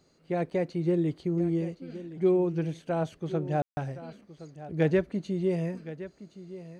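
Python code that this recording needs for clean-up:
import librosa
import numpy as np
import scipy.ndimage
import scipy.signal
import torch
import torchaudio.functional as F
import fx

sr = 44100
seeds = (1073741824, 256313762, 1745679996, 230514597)

y = fx.fix_ambience(x, sr, seeds[0], print_start_s=0.0, print_end_s=0.5, start_s=3.62, end_s=3.77)
y = fx.fix_echo_inverse(y, sr, delay_ms=1067, level_db=-15.0)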